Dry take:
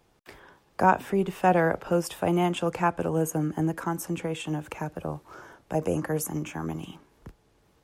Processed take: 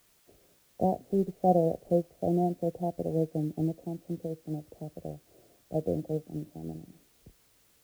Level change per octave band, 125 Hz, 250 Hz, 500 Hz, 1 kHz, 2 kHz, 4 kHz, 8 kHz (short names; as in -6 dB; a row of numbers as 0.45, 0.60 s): -3.0 dB, -3.0 dB, -2.5 dB, -7.5 dB, under -30 dB, under -15 dB, under -15 dB